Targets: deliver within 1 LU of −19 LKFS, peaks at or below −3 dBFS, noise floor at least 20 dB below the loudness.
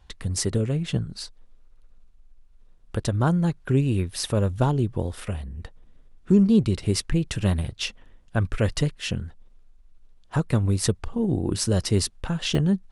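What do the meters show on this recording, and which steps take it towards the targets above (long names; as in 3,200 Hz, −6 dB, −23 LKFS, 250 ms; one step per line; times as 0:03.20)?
number of dropouts 1; longest dropout 2.4 ms; integrated loudness −25.0 LKFS; sample peak −8.0 dBFS; target loudness −19.0 LKFS
→ repair the gap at 0:12.55, 2.4 ms
level +6 dB
brickwall limiter −3 dBFS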